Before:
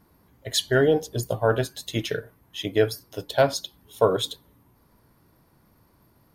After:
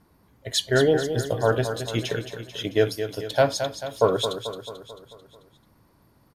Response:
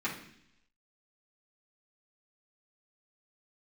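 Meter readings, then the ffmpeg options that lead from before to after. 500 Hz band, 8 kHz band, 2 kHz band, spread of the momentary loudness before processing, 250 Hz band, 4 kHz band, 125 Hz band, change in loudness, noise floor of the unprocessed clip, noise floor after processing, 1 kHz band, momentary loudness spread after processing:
+0.5 dB, 0.0 dB, +0.5 dB, 15 LU, +0.5 dB, +0.5 dB, +1.0 dB, +0.5 dB, −62 dBFS, −61 dBFS, +0.5 dB, 15 LU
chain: -af "lowpass=11000,aecho=1:1:220|440|660|880|1100|1320:0.355|0.195|0.107|0.059|0.0325|0.0179"

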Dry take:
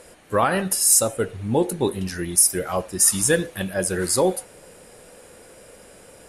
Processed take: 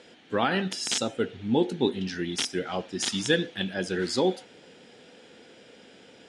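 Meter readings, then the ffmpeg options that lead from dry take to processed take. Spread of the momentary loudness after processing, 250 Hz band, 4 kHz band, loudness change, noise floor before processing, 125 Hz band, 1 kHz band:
6 LU, −2.0 dB, +1.0 dB, −8.0 dB, −48 dBFS, −6.0 dB, −6.5 dB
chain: -af "aeval=exprs='(mod(2*val(0)+1,2)-1)/2':channel_layout=same,highpass=160,equalizer=frequency=250:width_type=q:width=4:gain=6,equalizer=frequency=580:width_type=q:width=4:gain=-8,equalizer=frequency=1100:width_type=q:width=4:gain=-9,equalizer=frequency=3300:width_type=q:width=4:gain=9,lowpass=frequency=5700:width=0.5412,lowpass=frequency=5700:width=1.3066,volume=-2.5dB"

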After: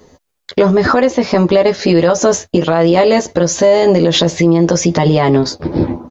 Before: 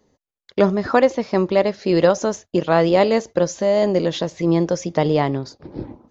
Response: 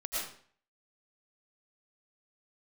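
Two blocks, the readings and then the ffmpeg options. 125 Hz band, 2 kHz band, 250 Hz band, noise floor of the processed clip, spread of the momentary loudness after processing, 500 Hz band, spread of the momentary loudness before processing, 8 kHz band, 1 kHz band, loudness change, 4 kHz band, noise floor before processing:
+9.0 dB, +7.0 dB, +8.0 dB, −69 dBFS, 5 LU, +6.0 dB, 10 LU, can't be measured, +5.5 dB, +6.5 dB, +11.5 dB, below −85 dBFS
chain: -filter_complex "[0:a]acompressor=threshold=-20dB:ratio=10,asplit=2[link_01][link_02];[link_02]adelay=12,volume=-4dB[link_03];[link_01][link_03]amix=inputs=2:normalize=0,alimiter=level_in=17.5dB:limit=-1dB:release=50:level=0:latency=1,volume=-1dB"

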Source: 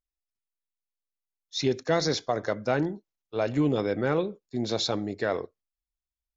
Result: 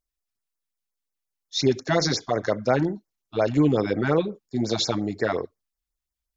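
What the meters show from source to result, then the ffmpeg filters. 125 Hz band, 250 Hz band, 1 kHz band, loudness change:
+5.0 dB, +4.5 dB, +3.5 dB, +4.0 dB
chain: -af "afftfilt=real='re*(1-between(b*sr/1024,410*pow(3500/410,0.5+0.5*sin(2*PI*5.6*pts/sr))/1.41,410*pow(3500/410,0.5+0.5*sin(2*PI*5.6*pts/sr))*1.41))':imag='im*(1-between(b*sr/1024,410*pow(3500/410,0.5+0.5*sin(2*PI*5.6*pts/sr))/1.41,410*pow(3500/410,0.5+0.5*sin(2*PI*5.6*pts/sr))*1.41))':win_size=1024:overlap=0.75,volume=5dB"

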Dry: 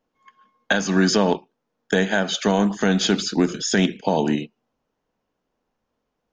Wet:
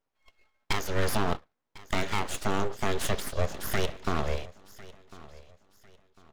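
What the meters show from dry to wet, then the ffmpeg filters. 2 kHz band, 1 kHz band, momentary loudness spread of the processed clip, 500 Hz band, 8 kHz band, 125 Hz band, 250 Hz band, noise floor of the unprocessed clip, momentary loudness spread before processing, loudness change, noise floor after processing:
−10.0 dB, −6.0 dB, 21 LU, −10.0 dB, −9.5 dB, −7.0 dB, −16.0 dB, −78 dBFS, 6 LU, −10.5 dB, −82 dBFS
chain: -af "aecho=1:1:1050|2100|3150:0.1|0.032|0.0102,aeval=exprs='abs(val(0))':channel_layout=same,volume=-6.5dB"

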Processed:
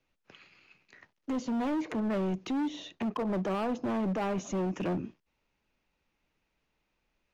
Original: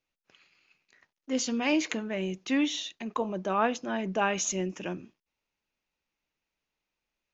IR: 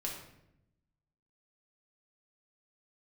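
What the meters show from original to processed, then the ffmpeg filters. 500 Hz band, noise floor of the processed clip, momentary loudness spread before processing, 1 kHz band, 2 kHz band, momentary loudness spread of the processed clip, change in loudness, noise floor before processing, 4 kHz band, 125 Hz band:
−2.0 dB, −80 dBFS, 7 LU, −4.5 dB, −9.5 dB, 5 LU, −2.5 dB, below −85 dBFS, −10.5 dB, +3.5 dB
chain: -filter_complex "[0:a]lowpass=frequency=2800:poles=1,lowshelf=frequency=240:gain=5,acrossover=split=290|350|1200[link_01][link_02][link_03][link_04];[link_04]acompressor=threshold=-51dB:ratio=6[link_05];[link_01][link_02][link_03][link_05]amix=inputs=4:normalize=0,alimiter=level_in=4.5dB:limit=-24dB:level=0:latency=1:release=189,volume=-4.5dB,asoftclip=type=hard:threshold=-36dB,volume=8dB"

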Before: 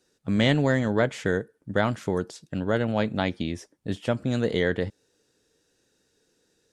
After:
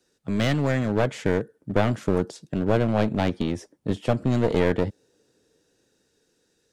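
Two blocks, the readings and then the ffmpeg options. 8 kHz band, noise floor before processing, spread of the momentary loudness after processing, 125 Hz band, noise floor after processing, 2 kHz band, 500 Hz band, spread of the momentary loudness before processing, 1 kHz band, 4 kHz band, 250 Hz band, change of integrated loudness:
+1.0 dB, −71 dBFS, 8 LU, +3.0 dB, −70 dBFS, −2.5 dB, +1.5 dB, 10 LU, +2.0 dB, −3.0 dB, +1.5 dB, +1.5 dB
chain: -filter_complex "[0:a]acrossover=split=100|880|4600[link_01][link_02][link_03][link_04];[link_02]dynaudnorm=framelen=250:gausssize=9:maxgain=6dB[link_05];[link_01][link_05][link_03][link_04]amix=inputs=4:normalize=0,aeval=exprs='clip(val(0),-1,0.0596)':channel_layout=same"

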